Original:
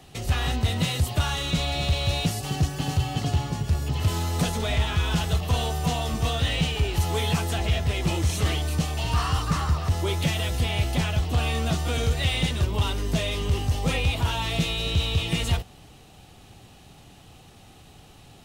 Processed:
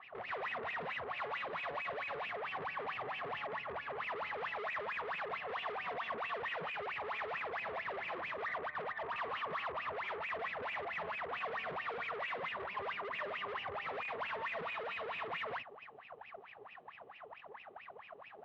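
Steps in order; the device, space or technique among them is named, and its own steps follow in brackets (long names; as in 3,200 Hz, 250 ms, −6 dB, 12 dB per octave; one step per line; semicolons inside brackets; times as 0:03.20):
0:08.45–0:09.16: Butterworth low-pass 2,000 Hz 96 dB per octave
wah-wah guitar rig (LFO wah 4.5 Hz 400–2,600 Hz, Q 17; tube saturation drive 59 dB, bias 0.65; loudspeaker in its box 110–3,400 Hz, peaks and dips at 320 Hz −7 dB, 660 Hz +4 dB, 1,100 Hz +9 dB, 1,900 Hz +6 dB)
level +17 dB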